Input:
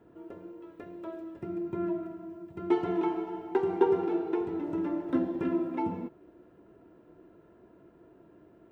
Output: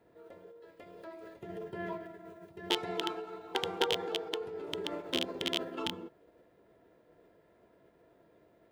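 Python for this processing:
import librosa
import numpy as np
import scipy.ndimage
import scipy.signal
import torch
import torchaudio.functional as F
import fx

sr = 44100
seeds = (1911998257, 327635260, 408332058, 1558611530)

y = fx.rattle_buzz(x, sr, strikes_db=-32.0, level_db=-15.0)
y = fx.high_shelf(y, sr, hz=3000.0, db=10.5)
y = fx.formant_shift(y, sr, semitones=4)
y = y * librosa.db_to_amplitude(-7.5)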